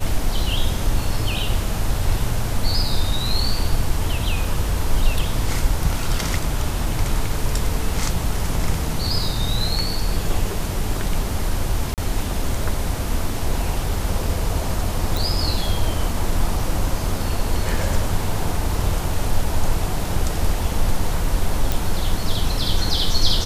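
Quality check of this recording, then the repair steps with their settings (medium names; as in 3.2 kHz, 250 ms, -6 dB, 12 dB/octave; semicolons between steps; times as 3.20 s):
11.94–11.98 s: dropout 38 ms
15.17 s: pop
21.72 s: pop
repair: de-click; interpolate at 11.94 s, 38 ms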